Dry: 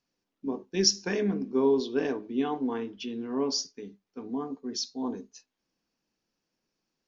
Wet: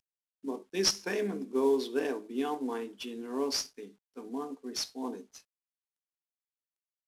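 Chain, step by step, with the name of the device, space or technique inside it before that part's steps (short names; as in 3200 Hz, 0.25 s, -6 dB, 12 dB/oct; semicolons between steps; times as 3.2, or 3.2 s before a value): early wireless headset (HPF 280 Hz 12 dB/oct; CVSD 64 kbps); gain -1.5 dB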